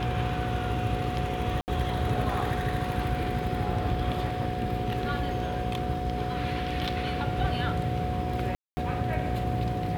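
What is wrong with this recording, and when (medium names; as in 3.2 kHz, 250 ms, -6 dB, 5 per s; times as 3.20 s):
buzz 60 Hz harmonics 9 -34 dBFS
whine 730 Hz -33 dBFS
1.61–1.68 s: dropout 69 ms
8.55–8.77 s: dropout 220 ms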